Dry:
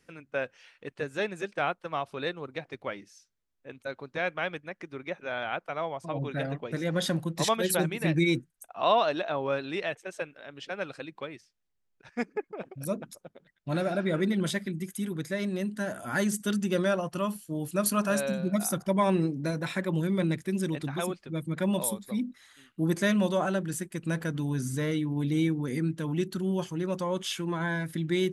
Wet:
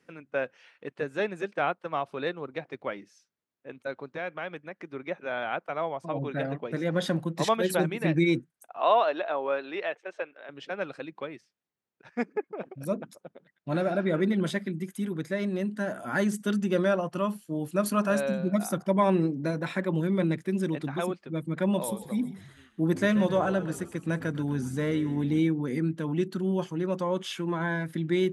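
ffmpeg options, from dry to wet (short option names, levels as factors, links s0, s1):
-filter_complex "[0:a]asettb=1/sr,asplit=3[s0][s1][s2];[s0]atrim=end=4.084[s3];[s1]atrim=start=4.08:end=4.85,asetpts=PTS-STARTPTS,afade=t=in:d=0.004:c=qsin,afade=t=out:st=0.766:d=0.004:c=qsin,acompressor=threshold=0.01:ratio=1.5:attack=3.2:release=140:knee=1:detection=peak[s4];[s2]atrim=start=4.846[s5];[s3][s4]acrossfade=d=0.004:c1=hsin:c2=qsin[s6];[s6][s5]acrossfade=d=0.004:c1=qsin:c2=hsin,asettb=1/sr,asplit=3[s7][s8][s9];[s7]atrim=end=8.774[s10];[s8]atrim=start=8.77:end=10.49,asetpts=PTS-STARTPTS,afade=t=in:d=0.004:c=qsin,afade=t=out:st=1.716:d=0.004:c=qsin,highpass=390,lowpass=4100[s11];[s9]atrim=start=10.486[s12];[s10][s11]acrossfade=d=0.004:c1=hsin:c2=qsin[s13];[s13][s12]acrossfade=d=0.004:c1=qsin:c2=hsin,asettb=1/sr,asplit=3[s14][s15][s16];[s14]atrim=end=21.754[s17];[s15]atrim=start=21.75:end=25.39,asetpts=PTS-STARTPTS,afade=t=in:d=0.004:c=qsin,afade=t=out:st=3.636:d=0.004:c=qsin,asplit=6[s18][s19][s20][s21][s22][s23];[s19]adelay=130,afreqshift=-56,volume=0.188[s24];[s20]adelay=260,afreqshift=-112,volume=0.104[s25];[s21]adelay=390,afreqshift=-168,volume=0.0569[s26];[s22]adelay=520,afreqshift=-224,volume=0.0313[s27];[s23]adelay=650,afreqshift=-280,volume=0.0172[s28];[s18][s24][s25][s26][s27][s28]amix=inputs=6:normalize=0,atrim=end_sample=160524[s29];[s16]atrim=start=25.386[s30];[s17][s29]acrossfade=d=0.004:c1=hsin:c2=qsin[s31];[s31][s30]acrossfade=d=0.004:c1=qsin:c2=hsin,highpass=150,highshelf=f=3400:g=-10.5,volume=1.33"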